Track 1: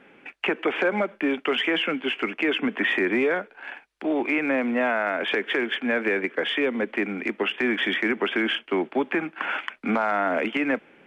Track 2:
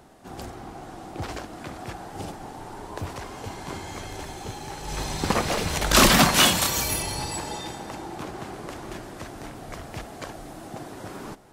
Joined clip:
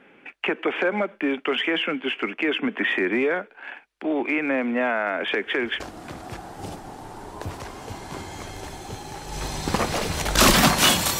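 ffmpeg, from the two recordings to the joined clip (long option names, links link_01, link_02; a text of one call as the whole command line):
ffmpeg -i cue0.wav -i cue1.wav -filter_complex "[1:a]asplit=2[link_01][link_02];[0:a]apad=whole_dur=11.19,atrim=end=11.19,atrim=end=5.802[link_03];[link_02]atrim=start=1.358:end=6.75[link_04];[link_01]atrim=start=0.72:end=1.36,asetpts=PTS-STARTPTS,volume=-18dB,afade=type=in:duration=0.004:curve=hsin,afade=type=out:start_time=0.636:duration=0.004:curve=hsin,adelay=5160[link_05];[link_03][link_04]acrossfade=duration=0.004:curve1=hsin:curve2=hsin[link_06];[link_06][link_05]amix=inputs=2:normalize=0" out.wav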